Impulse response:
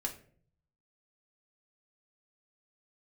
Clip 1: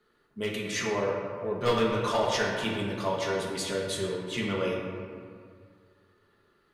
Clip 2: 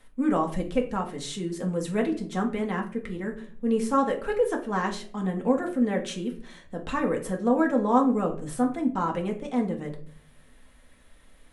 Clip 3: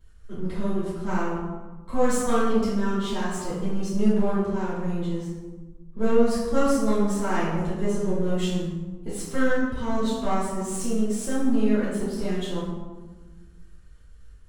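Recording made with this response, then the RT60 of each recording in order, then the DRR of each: 2; 2.0, 0.50, 1.3 seconds; −4.5, 0.5, −11.5 decibels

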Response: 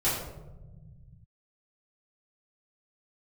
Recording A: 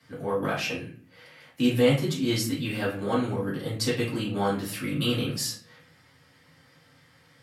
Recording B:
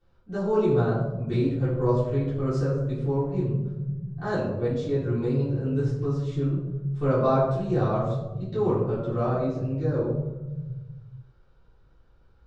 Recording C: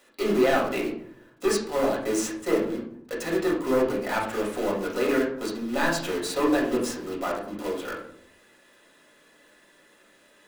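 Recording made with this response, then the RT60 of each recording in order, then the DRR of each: B; 0.45, 1.2, 0.65 seconds; −8.5, −12.5, −4.5 decibels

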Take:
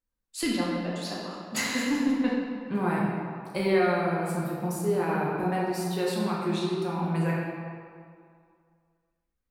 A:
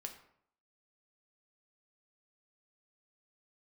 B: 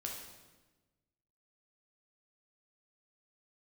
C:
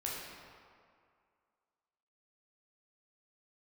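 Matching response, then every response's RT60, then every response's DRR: C; 0.65, 1.2, 2.2 seconds; 3.5, −1.0, −5.0 decibels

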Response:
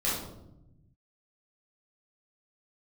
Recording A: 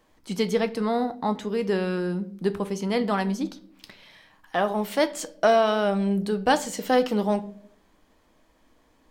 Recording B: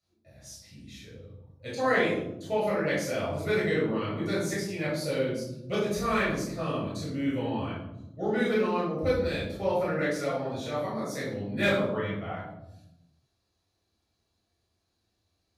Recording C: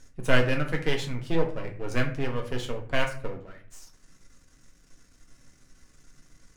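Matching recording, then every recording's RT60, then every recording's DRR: B; non-exponential decay, 0.85 s, 0.45 s; 9.5, −8.5, 1.5 decibels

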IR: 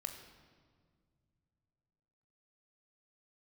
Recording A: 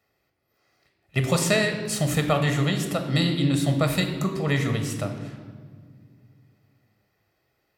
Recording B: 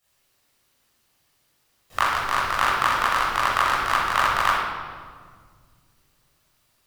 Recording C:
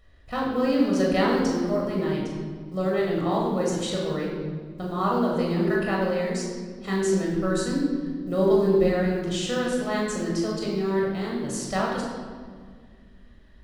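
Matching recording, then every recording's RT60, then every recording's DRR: A; 1.9, 1.8, 1.8 seconds; 5.0, −10.5, −3.0 decibels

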